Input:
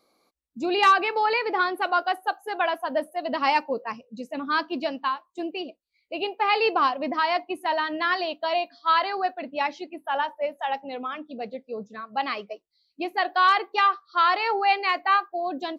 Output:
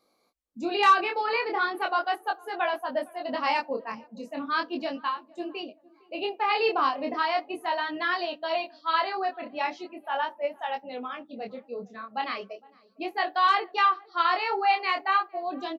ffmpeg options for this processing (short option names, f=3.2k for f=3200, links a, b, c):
-filter_complex "[0:a]flanger=delay=20:depth=6.6:speed=0.37,asplit=2[a][b];[b]adelay=459,lowpass=f=920:p=1,volume=-22.5dB,asplit=2[c][d];[d]adelay=459,lowpass=f=920:p=1,volume=0.48,asplit=2[e][f];[f]adelay=459,lowpass=f=920:p=1,volume=0.48[g];[a][c][e][g]amix=inputs=4:normalize=0"